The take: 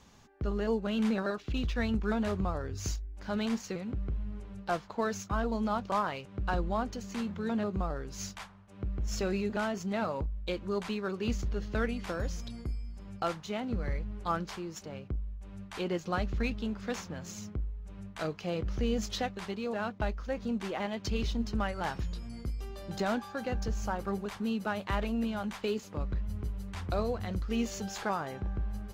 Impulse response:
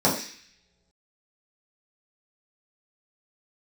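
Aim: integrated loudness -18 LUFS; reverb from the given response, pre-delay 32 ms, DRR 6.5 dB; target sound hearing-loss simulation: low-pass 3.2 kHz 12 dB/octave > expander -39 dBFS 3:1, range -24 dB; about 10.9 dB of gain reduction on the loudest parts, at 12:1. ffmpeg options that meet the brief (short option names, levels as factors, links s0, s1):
-filter_complex "[0:a]acompressor=threshold=0.0141:ratio=12,asplit=2[s0][s1];[1:a]atrim=start_sample=2205,adelay=32[s2];[s1][s2]afir=irnorm=-1:irlink=0,volume=0.0668[s3];[s0][s3]amix=inputs=2:normalize=0,lowpass=3200,agate=range=0.0631:threshold=0.0112:ratio=3,volume=13.3"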